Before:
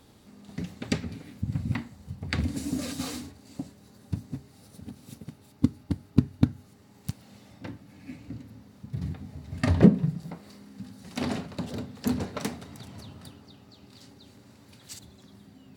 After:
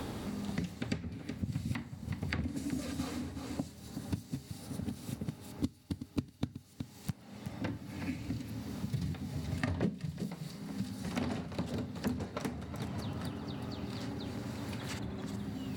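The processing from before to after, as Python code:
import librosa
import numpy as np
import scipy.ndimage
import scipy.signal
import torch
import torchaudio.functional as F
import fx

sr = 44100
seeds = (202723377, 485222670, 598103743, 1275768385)

y = x + 10.0 ** (-15.5 / 20.0) * np.pad(x, (int(372 * sr / 1000.0), 0))[:len(x)]
y = fx.band_squash(y, sr, depth_pct=100)
y = F.gain(torch.from_numpy(y), -5.0).numpy()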